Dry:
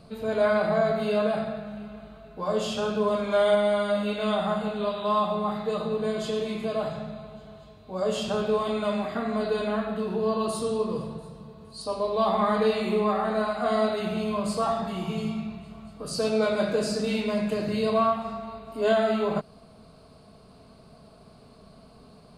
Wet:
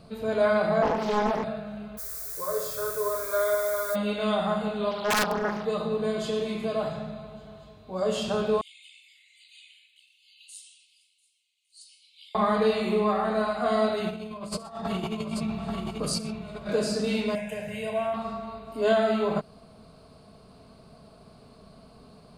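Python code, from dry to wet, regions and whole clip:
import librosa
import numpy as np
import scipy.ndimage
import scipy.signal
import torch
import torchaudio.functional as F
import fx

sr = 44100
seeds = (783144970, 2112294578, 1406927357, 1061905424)

y = fx.chain(x, sr, fx.highpass(hz=150.0, slope=24),
    fx.peak_eq(hz=7200.0, db=-4.0, octaves=1.2),
    fx.doppler_dist(depth_ms=0.74), at=(0.82, 1.44))
y = fx.dmg_noise_colour(y, sr, seeds[0], colour='blue', level_db=-36.0, at=(1.97, 3.94), fade=0.02)
y = fx.peak_eq(y, sr, hz=290.0, db=-7.0, octaves=0.79, at=(1.97, 3.94), fade=0.02)
y = fx.fixed_phaser(y, sr, hz=790.0, stages=6, at=(1.97, 3.94), fade=0.02)
y = fx.chain(y, sr, fx.highpass(hz=44.0, slope=12),
    fx.overflow_wrap(gain_db=17.5),
    fx.doppler_dist(depth_ms=0.64), at=(4.91, 5.65))
y = fx.chain(y, sr, fx.cheby_ripple_highpass(hz=2100.0, ripple_db=9),
    fx.flanger_cancel(hz=1.8, depth_ms=6.3), at=(8.61, 12.35))
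y = fx.chain(y, sr, fx.over_compress(threshold_db=-33.0, ratio=-0.5),
    fx.echo_multitap(ms=(69, 122, 835), db=(-18.5, -19.5, -4.0)), at=(14.08, 16.69))
y = fx.chain(y, sr, fx.tilt_shelf(db=-4.0, hz=1300.0),
    fx.fixed_phaser(hz=1200.0, stages=6), at=(17.35, 18.14))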